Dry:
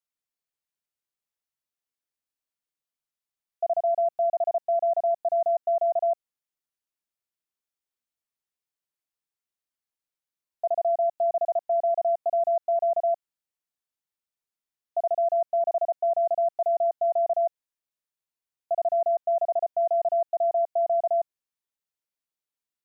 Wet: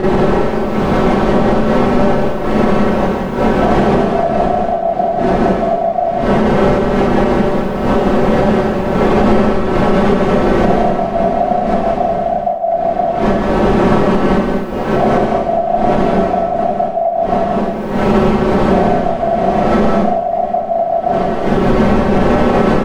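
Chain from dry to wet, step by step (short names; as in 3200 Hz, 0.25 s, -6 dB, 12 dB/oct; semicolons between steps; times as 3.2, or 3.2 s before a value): wind noise 380 Hz -30 dBFS; low shelf 380 Hz -8 dB; comb 5.3 ms, depth 39%; compressor 12:1, threshold -44 dBFS, peak gain reduction 27.5 dB; loudspeakers at several distances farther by 58 m -5 dB, 82 m -9 dB; Schroeder reverb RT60 0.31 s, combs from 29 ms, DRR -8.5 dB; maximiser +27.5 dB; gain -1 dB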